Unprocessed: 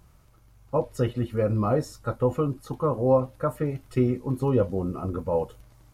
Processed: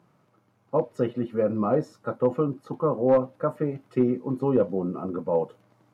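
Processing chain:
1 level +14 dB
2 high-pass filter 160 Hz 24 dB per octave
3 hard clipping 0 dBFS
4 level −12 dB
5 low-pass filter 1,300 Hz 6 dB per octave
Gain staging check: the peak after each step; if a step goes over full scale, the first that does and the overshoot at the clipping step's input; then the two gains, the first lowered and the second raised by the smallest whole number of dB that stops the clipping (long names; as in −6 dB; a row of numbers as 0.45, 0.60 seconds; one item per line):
+5.0, +5.0, 0.0, −12.0, −12.0 dBFS
step 1, 5.0 dB
step 1 +9 dB, step 4 −7 dB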